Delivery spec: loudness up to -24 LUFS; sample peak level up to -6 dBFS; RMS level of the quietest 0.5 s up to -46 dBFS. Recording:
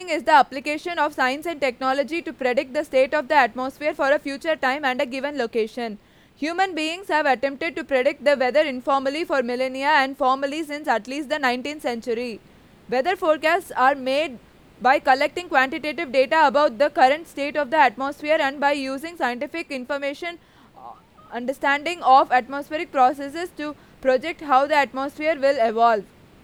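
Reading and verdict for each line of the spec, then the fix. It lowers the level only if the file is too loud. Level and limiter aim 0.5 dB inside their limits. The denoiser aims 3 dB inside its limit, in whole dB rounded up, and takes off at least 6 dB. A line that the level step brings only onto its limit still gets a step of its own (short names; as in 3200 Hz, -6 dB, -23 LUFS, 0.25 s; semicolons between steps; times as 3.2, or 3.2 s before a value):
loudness -21.5 LUFS: fail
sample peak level -4.5 dBFS: fail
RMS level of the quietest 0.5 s -51 dBFS: OK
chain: gain -3 dB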